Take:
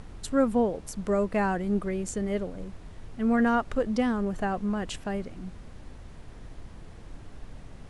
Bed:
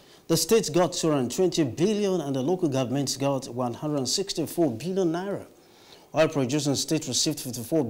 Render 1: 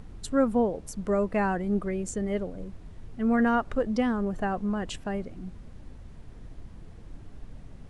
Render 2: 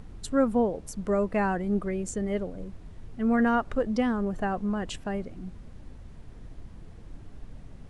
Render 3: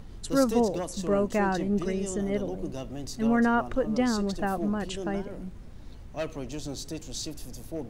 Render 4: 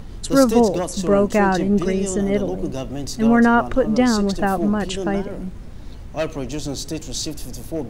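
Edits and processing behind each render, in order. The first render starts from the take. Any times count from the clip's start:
broadband denoise 6 dB, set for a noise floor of −46 dBFS
no processing that can be heard
mix in bed −11.5 dB
level +9 dB

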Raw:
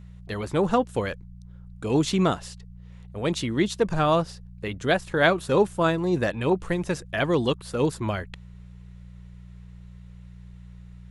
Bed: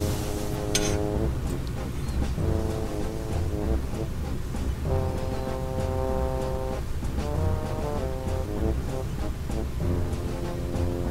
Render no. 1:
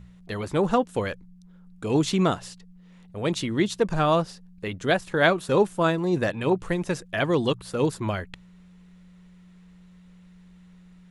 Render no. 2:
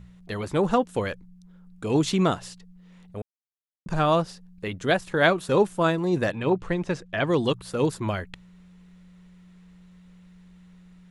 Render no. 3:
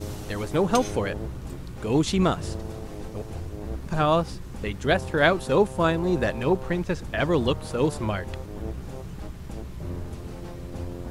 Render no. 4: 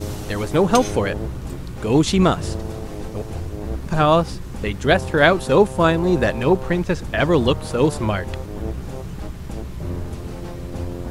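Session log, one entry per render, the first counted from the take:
hum removal 60 Hz, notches 2
0:03.22–0:03.86: silence; 0:06.38–0:07.27: high-frequency loss of the air 87 metres
mix in bed −7 dB
level +6 dB; brickwall limiter −1 dBFS, peak gain reduction 1 dB

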